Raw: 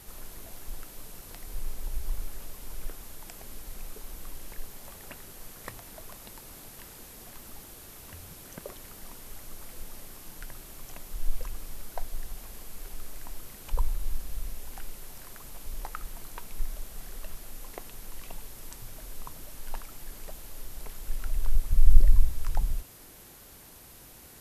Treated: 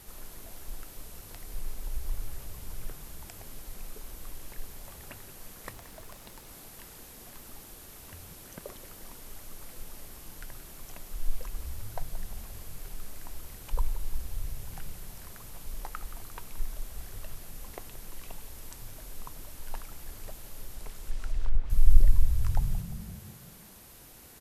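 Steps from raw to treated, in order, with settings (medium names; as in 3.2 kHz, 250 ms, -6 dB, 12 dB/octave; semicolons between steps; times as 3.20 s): frequency-shifting echo 175 ms, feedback 56%, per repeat -38 Hz, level -14 dB; 5.73–6.49 s: hysteresis with a dead band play -50.5 dBFS; 20.72–21.70 s: low-pass that closes with the level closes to 2.2 kHz, closed at -14.5 dBFS; trim -1.5 dB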